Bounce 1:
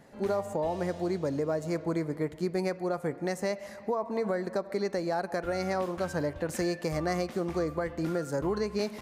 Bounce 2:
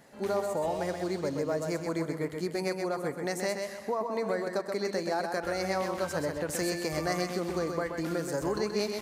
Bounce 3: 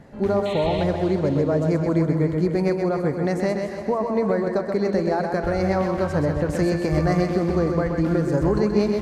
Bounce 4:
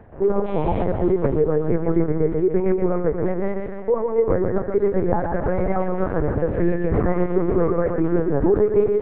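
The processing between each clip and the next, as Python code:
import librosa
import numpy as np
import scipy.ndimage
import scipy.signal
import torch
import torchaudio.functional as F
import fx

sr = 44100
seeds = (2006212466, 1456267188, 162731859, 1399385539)

y1 = fx.tilt_eq(x, sr, slope=1.5)
y1 = fx.echo_feedback(y1, sr, ms=128, feedback_pct=34, wet_db=-5.5)
y2 = fx.riaa(y1, sr, side='playback')
y2 = fx.spec_paint(y2, sr, seeds[0], shape='noise', start_s=0.45, length_s=0.39, low_hz=1800.0, high_hz=4300.0, level_db=-43.0)
y2 = fx.echo_split(y2, sr, split_hz=380.0, low_ms=146, high_ms=289, feedback_pct=52, wet_db=-11.0)
y2 = F.gain(torch.from_numpy(y2), 5.5).numpy()
y3 = scipy.signal.sosfilt(scipy.signal.butter(2, 1500.0, 'lowpass', fs=sr, output='sos'), y2)
y3 = y3 + 0.94 * np.pad(y3, (int(2.4 * sr / 1000.0), 0))[:len(y3)]
y3 = fx.lpc_vocoder(y3, sr, seeds[1], excitation='pitch_kept', order=8)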